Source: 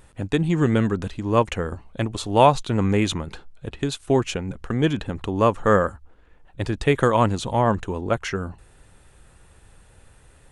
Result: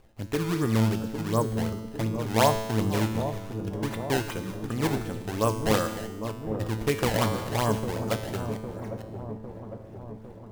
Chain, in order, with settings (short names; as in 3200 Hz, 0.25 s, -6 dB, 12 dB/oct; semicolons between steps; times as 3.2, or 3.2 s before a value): reverse delay 0.451 s, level -14 dB; 0.74–3.15 LPF 1400 Hz 24 dB/oct; decimation with a swept rate 22×, swing 160% 2.7 Hz; resonator 110 Hz, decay 1.2 s, harmonics all, mix 80%; dark delay 0.804 s, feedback 60%, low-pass 660 Hz, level -7 dB; gain +5 dB